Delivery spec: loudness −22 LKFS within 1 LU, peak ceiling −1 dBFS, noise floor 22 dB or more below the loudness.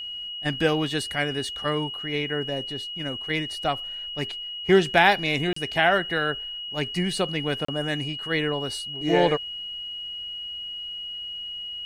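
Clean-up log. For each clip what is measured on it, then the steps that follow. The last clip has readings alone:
number of dropouts 2; longest dropout 34 ms; interfering tone 2,900 Hz; level of the tone −32 dBFS; integrated loudness −25.5 LKFS; sample peak −4.5 dBFS; target loudness −22.0 LKFS
→ repair the gap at 0:05.53/0:07.65, 34 ms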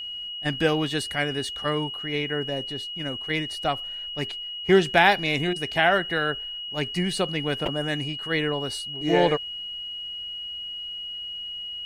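number of dropouts 0; interfering tone 2,900 Hz; level of the tone −32 dBFS
→ notch filter 2,900 Hz, Q 30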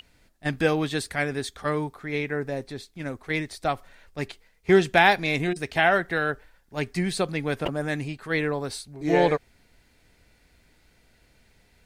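interfering tone none found; integrated loudness −25.5 LKFS; sample peak −5.0 dBFS; target loudness −22.0 LKFS
→ level +3.5 dB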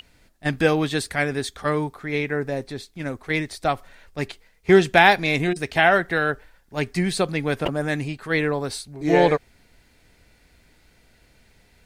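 integrated loudness −22.0 LKFS; sample peak −1.5 dBFS; background noise floor −59 dBFS

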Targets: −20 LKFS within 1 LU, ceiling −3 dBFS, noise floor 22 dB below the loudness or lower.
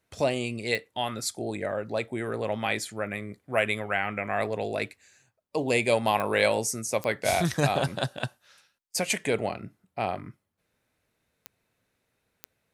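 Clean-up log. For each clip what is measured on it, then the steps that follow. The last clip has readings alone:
number of clicks 5; integrated loudness −28.5 LKFS; sample peak −8.0 dBFS; target loudness −20.0 LKFS
→ click removal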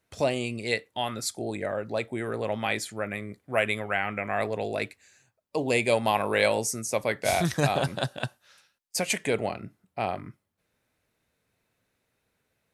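number of clicks 0; integrated loudness −28.5 LKFS; sample peak −8.0 dBFS; target loudness −20.0 LKFS
→ level +8.5 dB
brickwall limiter −3 dBFS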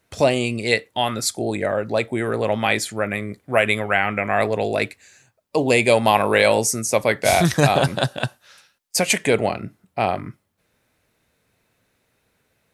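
integrated loudness −20.5 LKFS; sample peak −3.0 dBFS; background noise floor −69 dBFS

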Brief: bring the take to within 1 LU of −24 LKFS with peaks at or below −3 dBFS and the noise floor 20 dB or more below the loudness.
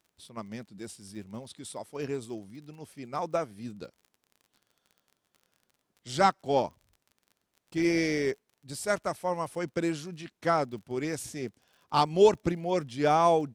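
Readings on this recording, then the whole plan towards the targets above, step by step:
crackle rate 38 per second; integrated loudness −29.0 LKFS; sample peak −10.0 dBFS; target loudness −24.0 LKFS
→ click removal
level +5 dB

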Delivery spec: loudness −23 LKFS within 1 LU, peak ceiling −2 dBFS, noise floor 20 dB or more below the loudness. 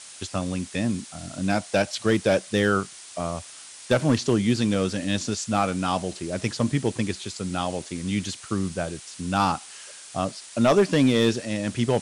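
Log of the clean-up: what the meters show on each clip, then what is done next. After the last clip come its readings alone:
share of clipped samples 0.4%; peaks flattened at −12.0 dBFS; background noise floor −44 dBFS; target noise floor −45 dBFS; integrated loudness −25.0 LKFS; sample peak −12.0 dBFS; target loudness −23.0 LKFS
→ clipped peaks rebuilt −12 dBFS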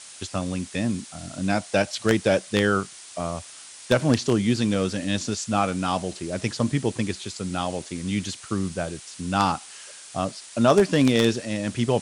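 share of clipped samples 0.0%; background noise floor −44 dBFS; target noise floor −45 dBFS
→ broadband denoise 6 dB, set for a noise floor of −44 dBFS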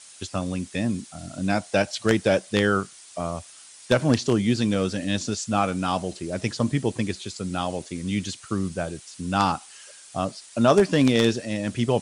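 background noise floor −48 dBFS; integrated loudness −25.0 LKFS; sample peak −3.0 dBFS; target loudness −23.0 LKFS
→ level +2 dB
brickwall limiter −2 dBFS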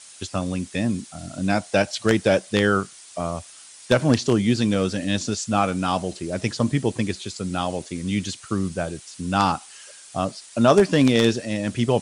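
integrated loudness −23.0 LKFS; sample peak −2.0 dBFS; background noise floor −46 dBFS

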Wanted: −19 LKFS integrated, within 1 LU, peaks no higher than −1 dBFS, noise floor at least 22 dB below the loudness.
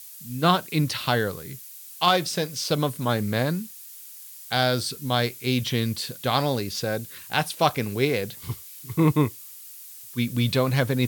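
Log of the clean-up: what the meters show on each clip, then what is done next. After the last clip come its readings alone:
background noise floor −43 dBFS; target noise floor −47 dBFS; integrated loudness −25.0 LKFS; sample peak −5.0 dBFS; target loudness −19.0 LKFS
→ broadband denoise 6 dB, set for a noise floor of −43 dBFS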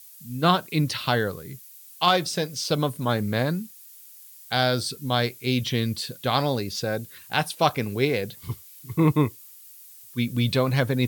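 background noise floor −48 dBFS; integrated loudness −25.0 LKFS; sample peak −5.5 dBFS; target loudness −19.0 LKFS
→ level +6 dB
brickwall limiter −1 dBFS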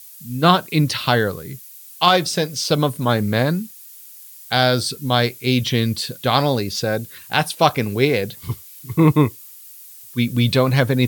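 integrated loudness −19.0 LKFS; sample peak −1.0 dBFS; background noise floor −42 dBFS

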